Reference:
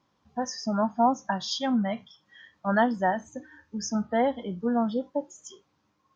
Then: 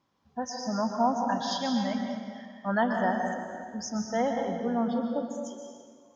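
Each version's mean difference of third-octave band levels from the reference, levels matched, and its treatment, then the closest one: 8.0 dB: plate-style reverb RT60 1.9 s, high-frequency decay 0.75×, pre-delay 110 ms, DRR 2.5 dB; trim -3.5 dB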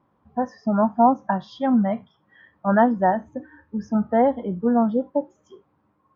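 2.5 dB: low-pass 1.3 kHz 12 dB/octave; trim +6.5 dB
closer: second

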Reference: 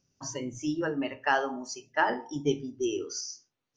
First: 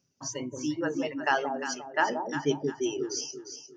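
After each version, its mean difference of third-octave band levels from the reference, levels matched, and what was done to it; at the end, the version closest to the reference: 6.5 dB: high-pass 97 Hz; reverb removal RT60 0.84 s; dynamic bell 5.1 kHz, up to +3 dB, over -44 dBFS, Q 1.1; on a send: echo whose repeats swap between lows and highs 176 ms, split 850 Hz, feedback 56%, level -4 dB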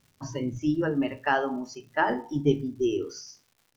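3.5 dB: low-pass 4.2 kHz 12 dB/octave; bass shelf 290 Hz +10.5 dB; crackle 250 per s -50 dBFS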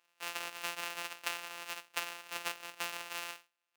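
22.5 dB: sorted samples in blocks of 256 samples; high-pass 1 kHz 12 dB/octave; peaking EQ 2.7 kHz +9 dB 0.23 oct; compression 16:1, threshold -37 dBFS, peak gain reduction 16.5 dB; trim +4.5 dB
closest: second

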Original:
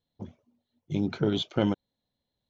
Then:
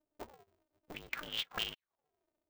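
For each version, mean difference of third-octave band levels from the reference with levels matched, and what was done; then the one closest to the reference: 14.0 dB: tilt EQ -3 dB/octave; auto-wah 450–2900 Hz, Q 21, up, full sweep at -17 dBFS; treble shelf 3 kHz +6.5 dB; polarity switched at an audio rate 150 Hz; trim +14.5 dB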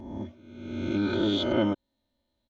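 6.5 dB: reverse spectral sustain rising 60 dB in 1.09 s; treble shelf 4.8 kHz -8 dB; comb 3.3 ms, depth 97%; in parallel at +1.5 dB: compression, threshold -30 dBFS, peak gain reduction 13.5 dB; on the sum: trim -6 dB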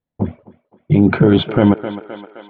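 4.5 dB: gate with hold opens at -57 dBFS; low-pass 2.4 kHz 24 dB/octave; on a send: thinning echo 260 ms, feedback 64%, high-pass 350 Hz, level -17.5 dB; on the sum: loudness maximiser +22 dB; trim -1 dB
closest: third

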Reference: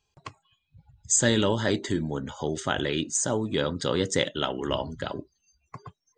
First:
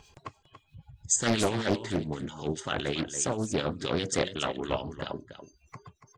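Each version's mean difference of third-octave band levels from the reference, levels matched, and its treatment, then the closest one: 5.0 dB: upward compressor, threshold -38 dBFS; harmonic tremolo 7.6 Hz, depth 70%, crossover 1.8 kHz; delay 284 ms -11.5 dB; loudspeaker Doppler distortion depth 0.77 ms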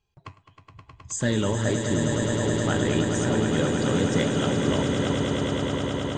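10.0 dB: tone controls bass +6 dB, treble -8 dB; flange 1.6 Hz, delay 4.3 ms, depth 7 ms, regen +79%; in parallel at -4.5 dB: hard clipper -21 dBFS, distortion -14 dB; on the sum: echo with a slow build-up 105 ms, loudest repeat 8, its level -8 dB; trim -2 dB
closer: first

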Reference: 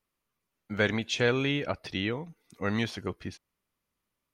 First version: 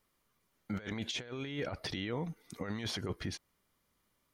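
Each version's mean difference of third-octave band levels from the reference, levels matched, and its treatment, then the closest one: 7.5 dB: compressor with a negative ratio -34 dBFS, ratio -0.5; band-stop 2.6 kHz, Q 11; peak limiter -28.5 dBFS, peak gain reduction 10 dB; trim +1 dB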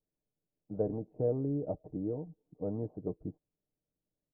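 12.0 dB: steep low-pass 700 Hz 36 dB/octave; comb 6.6 ms, depth 52%; harmonic-percussive split harmonic -4 dB; trim -2 dB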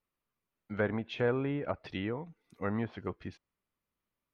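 4.0 dB: peaking EQ 7.1 kHz -8.5 dB 1.6 oct; low-pass that closes with the level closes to 1.3 kHz, closed at -26 dBFS; dynamic bell 930 Hz, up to +3 dB, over -41 dBFS, Q 0.87; trim -4 dB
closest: third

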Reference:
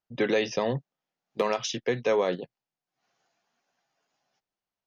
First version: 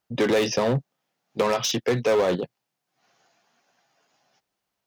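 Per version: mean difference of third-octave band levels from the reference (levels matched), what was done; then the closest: 4.5 dB: in parallel at -3.5 dB: wavefolder -29.5 dBFS; on the sum: dynamic bell 2.2 kHz, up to -3 dB, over -44 dBFS, Q 0.88; saturation -18.5 dBFS, distortion -18 dB; high-pass 44 Hz; trim +5.5 dB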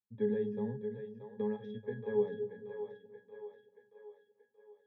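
10.5 dB: band-pass 120–2700 Hz; bass shelf 200 Hz +11.5 dB; pitch-class resonator G#, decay 0.2 s; on a send: two-band feedback delay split 420 Hz, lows 238 ms, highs 629 ms, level -8 dB; on the sum: trim -2 dB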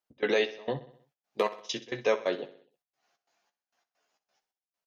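6.0 dB: trance gate "x.xx..x.x" 133 bpm -24 dB; tone controls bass -11 dB, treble +1 dB; doubling 14 ms -8 dB; on a send: feedback delay 63 ms, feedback 52%, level -15.5 dB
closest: first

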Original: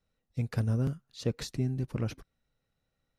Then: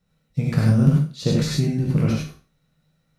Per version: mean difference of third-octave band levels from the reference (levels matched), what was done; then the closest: 7.0 dB: spectral sustain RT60 0.36 s; peaking EQ 160 Hz +13 dB 0.47 oct; gated-style reverb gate 120 ms rising, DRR -2 dB; trim +5 dB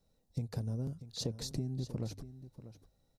5.0 dB: high-order bell 1.9 kHz -10.5 dB; hum notches 50/100 Hz; compression 12:1, threshold -40 dBFS, peak gain reduction 16.5 dB; on a send: delay 639 ms -13.5 dB; on the sum: trim +6.5 dB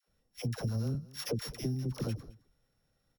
10.0 dB: sorted samples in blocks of 8 samples; phase dispersion lows, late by 79 ms, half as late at 560 Hz; compression 2.5:1, threshold -39 dBFS, peak gain reduction 10 dB; delay 215 ms -21.5 dB; trim +4.5 dB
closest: second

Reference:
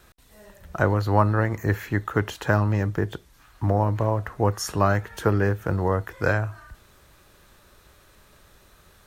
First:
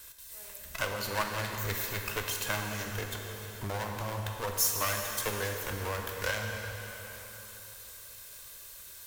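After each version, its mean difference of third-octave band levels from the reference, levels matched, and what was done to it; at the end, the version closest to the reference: 14.5 dB: comb filter that takes the minimum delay 1.9 ms; pre-emphasis filter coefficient 0.9; plate-style reverb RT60 3.2 s, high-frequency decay 0.85×, DRR 2.5 dB; in parallel at +1.5 dB: compression, threshold -51 dBFS, peak gain reduction 20 dB; on the sum: trim +5 dB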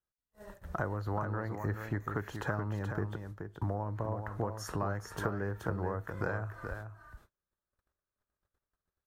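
5.5 dB: gate -48 dBFS, range -41 dB; resonant high shelf 1.9 kHz -6 dB, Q 1.5; compression 5:1, threshold -33 dBFS, peak gain reduction 18.5 dB; delay 427 ms -7 dB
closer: second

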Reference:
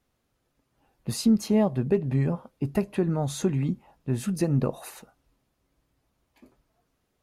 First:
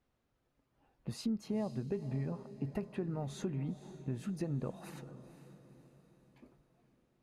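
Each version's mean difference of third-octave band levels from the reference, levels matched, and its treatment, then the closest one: 4.5 dB: low-pass 3 kHz 6 dB/octave; compression 2:1, threshold -36 dBFS, peak gain reduction 11 dB; on a send: echo that smears into a reverb 492 ms, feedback 47%, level -13.5 dB; on the sum: trim -4.5 dB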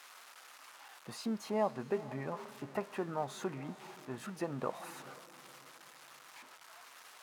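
10.0 dB: zero-crossing glitches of -27 dBFS; band-pass filter 1.1 kHz, Q 1.4; echo that smears into a reverb 468 ms, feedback 42%, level -16 dB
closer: first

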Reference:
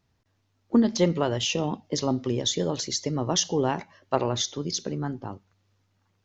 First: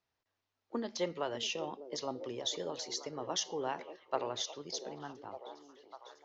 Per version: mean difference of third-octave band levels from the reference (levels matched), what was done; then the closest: 5.5 dB: three-band isolator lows -15 dB, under 390 Hz, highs -13 dB, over 6.9 kHz; repeats whose band climbs or falls 599 ms, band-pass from 370 Hz, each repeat 0.7 oct, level -8 dB; trim -8.5 dB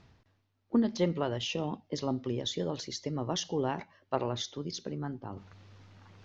1.0 dB: low-pass 4.6 kHz 12 dB/octave; reverse; upward compressor, threshold -30 dBFS; reverse; trim -6.5 dB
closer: second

